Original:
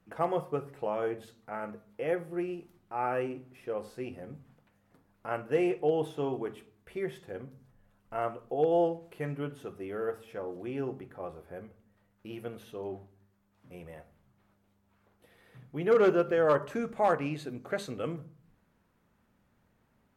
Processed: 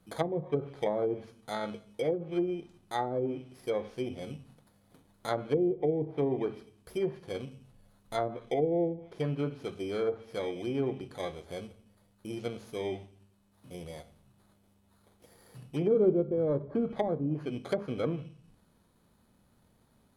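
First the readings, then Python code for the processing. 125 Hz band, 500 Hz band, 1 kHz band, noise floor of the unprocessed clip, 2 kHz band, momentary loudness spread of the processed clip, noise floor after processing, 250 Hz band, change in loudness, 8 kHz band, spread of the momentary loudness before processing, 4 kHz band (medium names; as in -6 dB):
+4.0 dB, -0.5 dB, -4.0 dB, -71 dBFS, -5.5 dB, 14 LU, -67 dBFS, +2.5 dB, -0.5 dB, no reading, 19 LU, +4.0 dB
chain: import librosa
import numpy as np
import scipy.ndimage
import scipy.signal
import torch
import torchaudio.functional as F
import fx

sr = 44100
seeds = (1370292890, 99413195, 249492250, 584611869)

y = fx.bit_reversed(x, sr, seeds[0], block=16)
y = fx.env_lowpass_down(y, sr, base_hz=350.0, full_db=-26.0)
y = F.gain(torch.from_numpy(y), 4.0).numpy()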